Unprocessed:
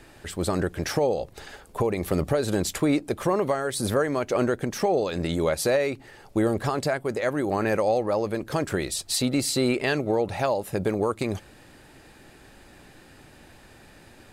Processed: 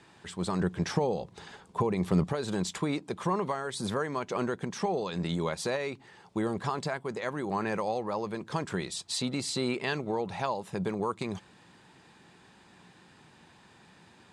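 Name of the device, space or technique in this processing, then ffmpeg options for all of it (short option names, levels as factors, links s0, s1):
car door speaker: -filter_complex "[0:a]asettb=1/sr,asplit=3[s0][s1][s2];[s0]atrim=end=0.614[s3];[s1]atrim=start=0.61:end=2.24,asetpts=PTS-STARTPTS,afade=t=in:d=0.004:c=qsin,afade=t=out:st=1.626:d=0.004:c=qsin,lowshelf=f=460:g=5.5[s4];[s2]atrim=start=2.236[s5];[s3][s4]acrossfade=d=0.004:c1=hsin:c2=qsin[s6];[s6][s5]acrossfade=d=0.004:c1=qsin:c2=hsin,highpass=110,equalizer=f=180:t=q:w=4:g=8,equalizer=f=290:t=q:w=4:g=-4,equalizer=f=580:t=q:w=4:g=-6,equalizer=f=990:t=q:w=4:g=8,equalizer=f=3500:t=q:w=4:g=4,lowpass=f=8800:w=0.5412,lowpass=f=8800:w=1.3066,volume=0.473"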